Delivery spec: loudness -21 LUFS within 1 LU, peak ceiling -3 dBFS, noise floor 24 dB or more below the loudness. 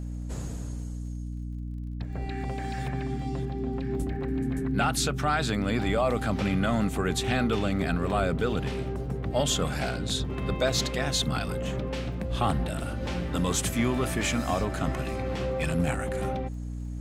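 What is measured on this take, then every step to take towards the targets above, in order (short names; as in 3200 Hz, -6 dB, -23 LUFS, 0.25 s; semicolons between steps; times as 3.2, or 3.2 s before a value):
ticks 39/s; hum 60 Hz; harmonics up to 300 Hz; hum level -32 dBFS; loudness -29.0 LUFS; peak -14.0 dBFS; loudness target -21.0 LUFS
-> de-click; de-hum 60 Hz, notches 5; gain +8 dB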